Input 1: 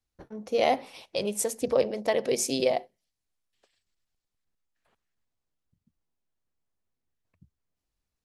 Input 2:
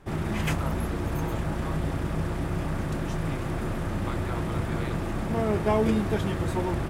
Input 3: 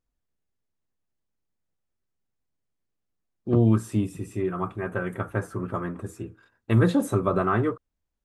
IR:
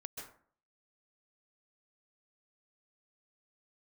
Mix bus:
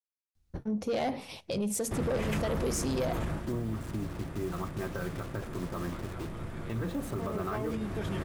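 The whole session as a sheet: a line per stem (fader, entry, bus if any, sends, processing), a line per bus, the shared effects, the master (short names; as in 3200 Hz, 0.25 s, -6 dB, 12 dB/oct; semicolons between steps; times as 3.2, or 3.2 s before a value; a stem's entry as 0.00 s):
+1.5 dB, 0.35 s, no send, tone controls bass +14 dB, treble +1 dB
+2.0 dB, 1.85 s, no send, bell 800 Hz -3.5 dB 0.21 oct; auto duck -13 dB, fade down 0.25 s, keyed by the third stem
-3.5 dB, 0.00 s, no send, level-crossing sampler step -35.5 dBFS; compressor, threshold -26 dBFS, peak gain reduction 11.5 dB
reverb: off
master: soft clip -17.5 dBFS, distortion -13 dB; limiter -25 dBFS, peak gain reduction 7.5 dB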